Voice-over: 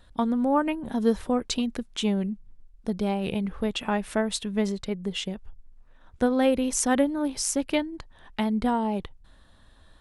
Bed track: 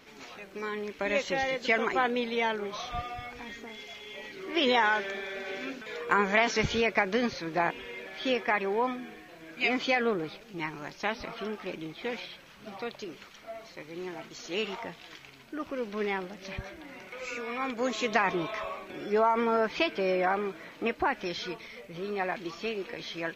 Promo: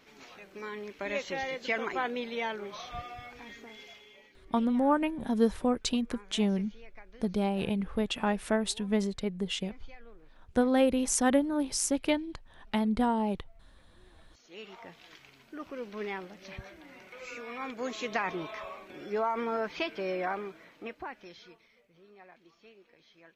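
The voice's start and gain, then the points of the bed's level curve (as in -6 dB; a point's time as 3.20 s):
4.35 s, -2.5 dB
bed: 3.87 s -5 dB
4.64 s -27 dB
14.00 s -27 dB
15.01 s -5.5 dB
20.31 s -5.5 dB
22.08 s -23 dB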